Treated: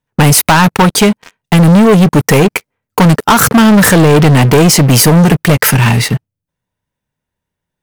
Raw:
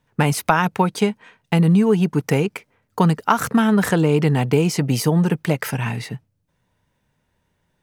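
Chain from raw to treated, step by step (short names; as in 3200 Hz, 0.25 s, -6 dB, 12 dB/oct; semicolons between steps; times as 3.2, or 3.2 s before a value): high shelf 8200 Hz +7 dB; sample leveller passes 5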